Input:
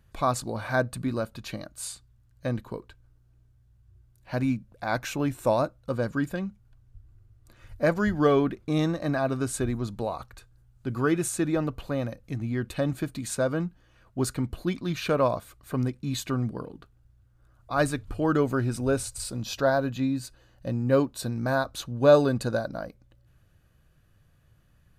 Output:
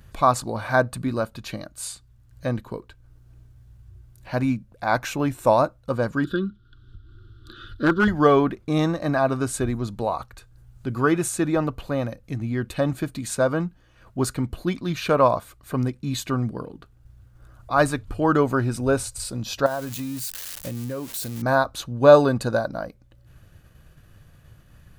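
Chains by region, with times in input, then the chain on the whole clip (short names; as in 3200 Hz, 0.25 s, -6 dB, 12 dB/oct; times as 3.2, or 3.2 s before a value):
6.24–8.08 EQ curve 170 Hz 0 dB, 360 Hz +10 dB, 560 Hz -12 dB, 810 Hz -26 dB, 1400 Hz +11 dB, 2200 Hz -22 dB, 3400 Hz +10 dB, 6600 Hz -19 dB + hard clip -16.5 dBFS + mismatched tape noise reduction encoder only
19.66–21.42 switching spikes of -22.5 dBFS + compressor 12:1, threshold -29 dBFS
whole clip: expander -56 dBFS; dynamic EQ 970 Hz, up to +6 dB, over -37 dBFS, Q 1.2; upward compressor, threshold -40 dBFS; gain +3 dB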